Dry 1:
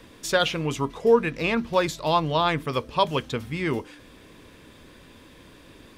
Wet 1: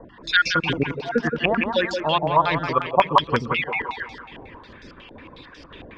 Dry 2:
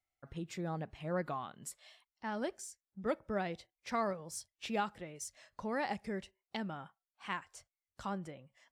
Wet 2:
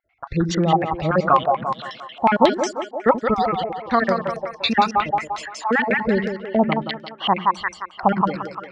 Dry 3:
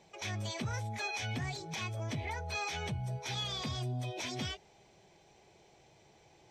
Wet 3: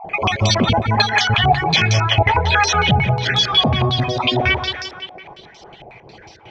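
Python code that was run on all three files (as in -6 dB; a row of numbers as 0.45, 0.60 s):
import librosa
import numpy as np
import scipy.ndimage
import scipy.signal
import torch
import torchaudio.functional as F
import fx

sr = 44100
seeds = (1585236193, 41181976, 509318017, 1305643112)

p1 = fx.spec_dropout(x, sr, seeds[0], share_pct=37)
p2 = fx.dereverb_blind(p1, sr, rt60_s=1.1)
p3 = fx.rider(p2, sr, range_db=4, speed_s=0.5)
p4 = fx.air_absorb(p3, sr, metres=72.0)
p5 = p4 + fx.echo_split(p4, sr, split_hz=320.0, low_ms=82, high_ms=173, feedback_pct=52, wet_db=-5.5, dry=0)
p6 = fx.filter_held_lowpass(p5, sr, hz=11.0, low_hz=750.0, high_hz=5300.0)
y = p6 * 10.0 ** (-1.5 / 20.0) / np.max(np.abs(p6))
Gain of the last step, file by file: +3.0, +20.0, +22.0 dB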